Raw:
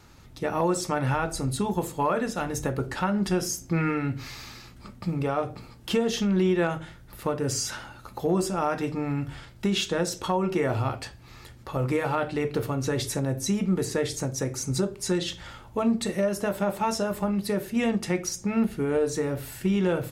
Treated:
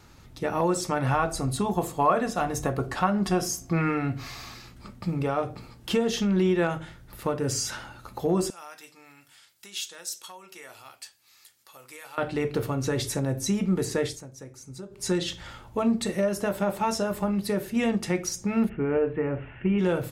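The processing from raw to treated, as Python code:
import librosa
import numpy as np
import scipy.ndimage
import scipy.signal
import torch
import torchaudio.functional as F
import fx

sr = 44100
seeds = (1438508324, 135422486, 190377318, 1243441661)

y = fx.small_body(x, sr, hz=(710.0, 1100.0), ring_ms=45, db=11, at=(1.05, 4.55))
y = fx.differentiator(y, sr, at=(8.5, 12.18))
y = fx.steep_lowpass(y, sr, hz=2900.0, slope=72, at=(18.68, 19.78), fade=0.02)
y = fx.edit(y, sr, fx.fade_down_up(start_s=14.05, length_s=1.01, db=-14.5, fade_s=0.17), tone=tone)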